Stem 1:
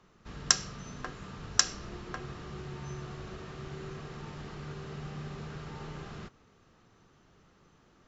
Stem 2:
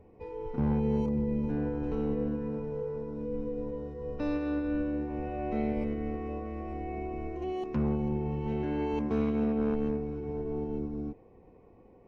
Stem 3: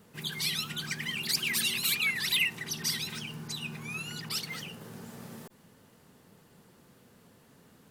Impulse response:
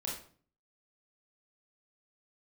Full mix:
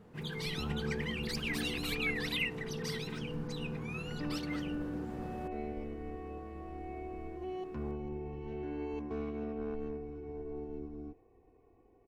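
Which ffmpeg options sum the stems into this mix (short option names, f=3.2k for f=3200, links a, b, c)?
-filter_complex "[1:a]aecho=1:1:2.7:0.55,volume=-9.5dB[a];[2:a]lowpass=f=1k:p=1,volume=2dB[b];[a][b]amix=inputs=2:normalize=0"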